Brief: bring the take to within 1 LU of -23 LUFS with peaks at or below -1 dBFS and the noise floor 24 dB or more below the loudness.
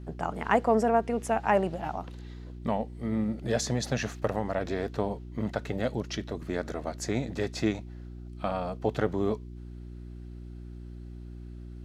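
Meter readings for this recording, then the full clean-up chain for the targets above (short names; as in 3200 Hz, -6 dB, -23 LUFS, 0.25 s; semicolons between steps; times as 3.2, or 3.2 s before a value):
hum 60 Hz; harmonics up to 360 Hz; hum level -40 dBFS; loudness -30.5 LUFS; peak -9.5 dBFS; loudness target -23.0 LUFS
-> de-hum 60 Hz, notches 6; gain +7.5 dB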